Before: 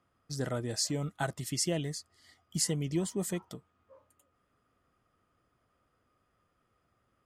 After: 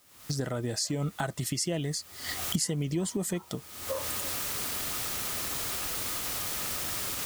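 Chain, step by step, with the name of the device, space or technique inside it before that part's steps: cheap recorder with automatic gain (white noise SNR 26 dB; recorder AGC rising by 56 dB/s)

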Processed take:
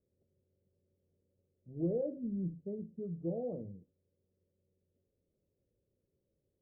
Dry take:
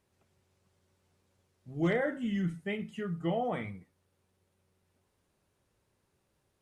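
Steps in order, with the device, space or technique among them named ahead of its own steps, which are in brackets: under water (low-pass 450 Hz 24 dB/octave; peaking EQ 540 Hz +10 dB 0.56 oct); trim -5.5 dB

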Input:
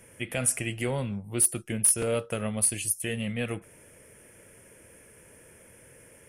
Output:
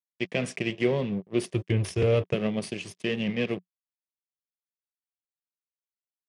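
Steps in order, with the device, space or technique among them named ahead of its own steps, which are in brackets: 1.48–2.34 s: resonant low shelf 130 Hz +11.5 dB, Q 3; blown loudspeaker (crossover distortion -38.5 dBFS; cabinet simulation 140–5100 Hz, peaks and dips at 180 Hz +10 dB, 390 Hz +8 dB, 850 Hz -7 dB, 1.4 kHz -10 dB, 4.2 kHz -4 dB); trim +5 dB

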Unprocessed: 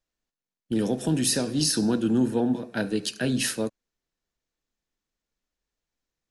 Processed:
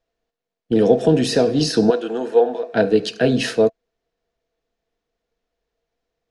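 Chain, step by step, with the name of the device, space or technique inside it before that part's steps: 1.90–2.74 s: high-pass 590 Hz 12 dB/octave; inside a cardboard box (low-pass 4.5 kHz 12 dB/octave; small resonant body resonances 470/670 Hz, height 16 dB, ringing for 65 ms); trim +6 dB

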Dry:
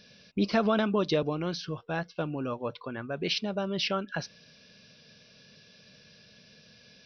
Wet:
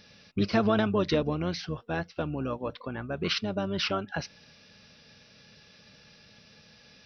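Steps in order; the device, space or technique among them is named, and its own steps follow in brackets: octave pedal (harmony voices -12 st -8 dB)

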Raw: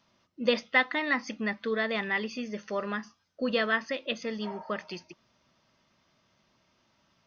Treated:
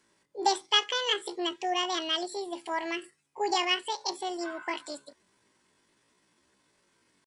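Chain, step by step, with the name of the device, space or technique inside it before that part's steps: chipmunk voice (pitch shift +8.5 st)

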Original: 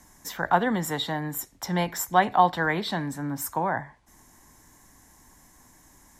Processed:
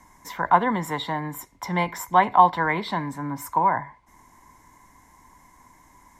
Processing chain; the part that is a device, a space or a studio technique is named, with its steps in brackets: inside a helmet (treble shelf 3.8 kHz -6.5 dB; small resonant body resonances 1/2.1 kHz, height 15 dB, ringing for 35 ms)

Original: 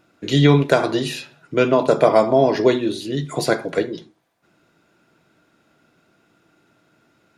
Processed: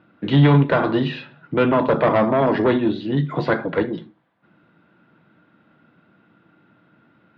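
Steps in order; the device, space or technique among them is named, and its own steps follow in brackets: guitar amplifier (valve stage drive 13 dB, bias 0.35; tone controls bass +2 dB, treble -12 dB; cabinet simulation 96–3600 Hz, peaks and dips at 200 Hz +4 dB, 400 Hz -6 dB, 680 Hz -5 dB, 2.4 kHz -5 dB); trim +5 dB

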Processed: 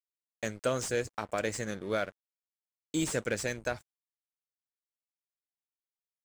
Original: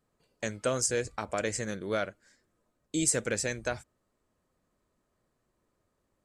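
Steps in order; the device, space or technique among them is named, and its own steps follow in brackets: early transistor amplifier (crossover distortion -50 dBFS; slew-rate limiter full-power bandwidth 120 Hz)

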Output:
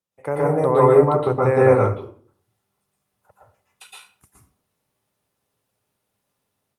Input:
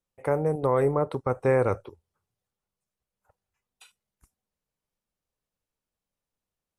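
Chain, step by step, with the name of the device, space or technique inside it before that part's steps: far-field microphone of a smart speaker (reverberation RT60 0.50 s, pre-delay 110 ms, DRR -5 dB; high-pass 90 Hz 24 dB/octave; level rider gain up to 11 dB; trim -1 dB; Opus 48 kbps 48 kHz)

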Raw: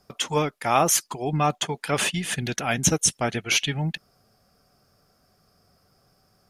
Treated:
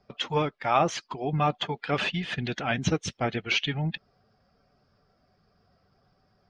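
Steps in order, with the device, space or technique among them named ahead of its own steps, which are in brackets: clip after many re-uploads (low-pass 4.3 kHz 24 dB/octave; coarse spectral quantiser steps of 15 dB); trim -2 dB

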